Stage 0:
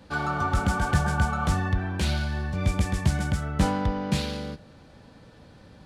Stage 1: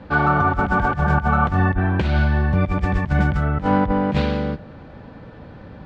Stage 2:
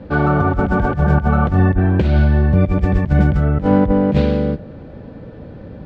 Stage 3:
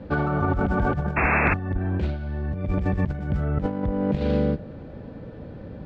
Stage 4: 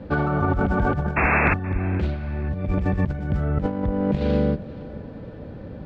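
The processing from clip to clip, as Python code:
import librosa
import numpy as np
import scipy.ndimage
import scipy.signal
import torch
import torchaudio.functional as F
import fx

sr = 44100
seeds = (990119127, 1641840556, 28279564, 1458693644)

y1 = scipy.signal.sosfilt(scipy.signal.butter(2, 2100.0, 'lowpass', fs=sr, output='sos'), x)
y1 = fx.over_compress(y1, sr, threshold_db=-26.0, ratio=-0.5)
y1 = y1 * librosa.db_to_amplitude(9.0)
y2 = fx.low_shelf_res(y1, sr, hz=690.0, db=6.5, q=1.5)
y2 = y2 * librosa.db_to_amplitude(-1.5)
y3 = fx.over_compress(y2, sr, threshold_db=-16.0, ratio=-0.5)
y3 = fx.spec_paint(y3, sr, seeds[0], shape='noise', start_s=1.16, length_s=0.38, low_hz=230.0, high_hz=2700.0, level_db=-15.0)
y3 = y3 * librosa.db_to_amplitude(-7.0)
y4 = fx.echo_feedback(y3, sr, ms=475, feedback_pct=40, wet_db=-20.0)
y4 = y4 * librosa.db_to_amplitude(1.5)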